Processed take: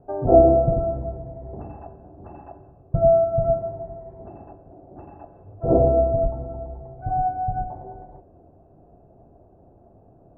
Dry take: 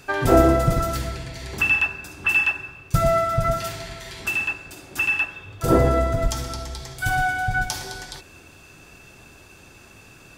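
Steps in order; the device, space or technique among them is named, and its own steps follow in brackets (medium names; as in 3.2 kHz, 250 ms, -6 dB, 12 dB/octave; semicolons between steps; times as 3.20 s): 5.32–5.73 s: treble shelf 2.4 kHz +11.5 dB; under water (low-pass 700 Hz 24 dB/octave; peaking EQ 690 Hz +11 dB 0.42 oct); trim -2.5 dB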